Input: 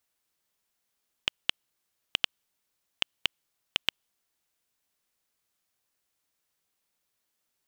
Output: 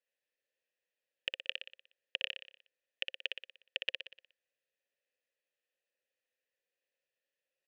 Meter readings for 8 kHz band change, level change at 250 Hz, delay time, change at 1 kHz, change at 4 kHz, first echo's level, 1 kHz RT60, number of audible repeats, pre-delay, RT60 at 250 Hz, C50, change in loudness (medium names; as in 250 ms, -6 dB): under -15 dB, -14.0 dB, 60 ms, -17.0 dB, -8.0 dB, -5.0 dB, no reverb, 6, no reverb, no reverb, no reverb, -7.0 dB